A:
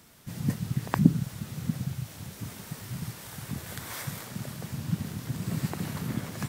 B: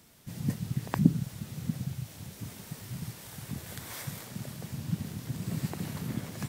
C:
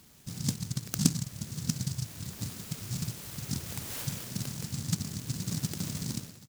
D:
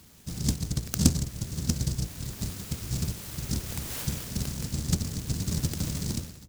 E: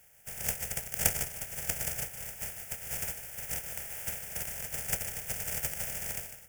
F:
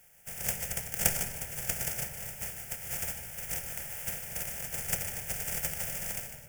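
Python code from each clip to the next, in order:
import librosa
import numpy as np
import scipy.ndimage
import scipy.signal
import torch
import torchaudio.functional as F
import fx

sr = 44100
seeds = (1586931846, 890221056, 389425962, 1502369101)

y1 = fx.peak_eq(x, sr, hz=1300.0, db=-3.5, octaves=1.1)
y1 = y1 * 10.0 ** (-2.5 / 20.0)
y2 = fx.fade_out_tail(y1, sr, length_s=0.59)
y2 = fx.rider(y2, sr, range_db=4, speed_s=0.5)
y2 = fx.noise_mod_delay(y2, sr, seeds[0], noise_hz=5900.0, depth_ms=0.38)
y3 = fx.octave_divider(y2, sr, octaves=1, level_db=-1.0)
y3 = y3 * 10.0 ** (2.5 / 20.0)
y4 = fx.spec_flatten(y3, sr, power=0.31)
y4 = fx.fixed_phaser(y4, sr, hz=1100.0, stages=6)
y4 = y4 + 10.0 ** (-10.5 / 20.0) * np.pad(y4, (int(151 * sr / 1000.0), 0))[:len(y4)]
y4 = y4 * 10.0 ** (-4.0 / 20.0)
y5 = fx.room_shoebox(y4, sr, seeds[1], volume_m3=2100.0, walls='mixed', distance_m=0.87)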